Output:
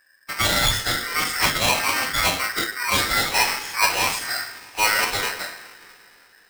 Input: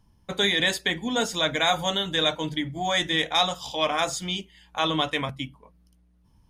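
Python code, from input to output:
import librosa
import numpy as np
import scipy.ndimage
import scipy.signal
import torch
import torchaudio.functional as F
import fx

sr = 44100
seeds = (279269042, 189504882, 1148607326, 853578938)

y = fx.rev_double_slope(x, sr, seeds[0], early_s=0.62, late_s=3.5, knee_db=-21, drr_db=-2.0)
y = fx.pitch_keep_formants(y, sr, semitones=-7.0)
y = y * np.sign(np.sin(2.0 * np.pi * 1700.0 * np.arange(len(y)) / sr))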